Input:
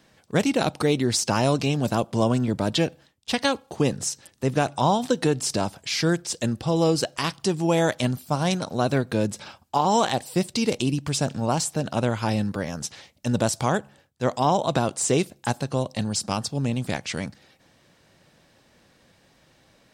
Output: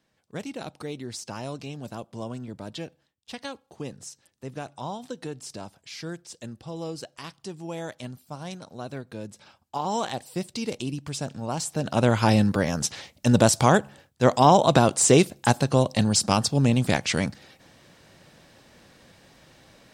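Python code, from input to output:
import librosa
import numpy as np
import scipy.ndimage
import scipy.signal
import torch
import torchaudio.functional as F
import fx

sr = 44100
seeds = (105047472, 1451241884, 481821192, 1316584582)

y = fx.gain(x, sr, db=fx.line((9.31, -13.5), (9.86, -7.0), (11.48, -7.0), (12.15, 5.0)))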